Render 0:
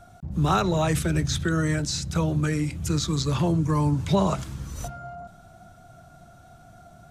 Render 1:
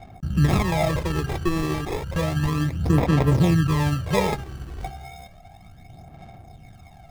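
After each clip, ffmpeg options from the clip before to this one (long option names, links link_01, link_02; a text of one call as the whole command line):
ffmpeg -i in.wav -af "acrusher=samples=30:mix=1:aa=0.000001,aphaser=in_gain=1:out_gain=1:delay=2.7:decay=0.55:speed=0.32:type=sinusoidal,highshelf=frequency=5100:gain=-6.5" out.wav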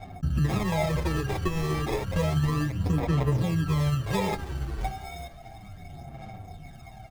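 ffmpeg -i in.wav -filter_complex "[0:a]acompressor=threshold=-26dB:ratio=4,asplit=6[link_01][link_02][link_03][link_04][link_05][link_06];[link_02]adelay=325,afreqshift=-40,volume=-22dB[link_07];[link_03]adelay=650,afreqshift=-80,volume=-25.7dB[link_08];[link_04]adelay=975,afreqshift=-120,volume=-29.5dB[link_09];[link_05]adelay=1300,afreqshift=-160,volume=-33.2dB[link_10];[link_06]adelay=1625,afreqshift=-200,volume=-37dB[link_11];[link_01][link_07][link_08][link_09][link_10][link_11]amix=inputs=6:normalize=0,asplit=2[link_12][link_13];[link_13]adelay=7.6,afreqshift=-1.4[link_14];[link_12][link_14]amix=inputs=2:normalize=1,volume=5dB" out.wav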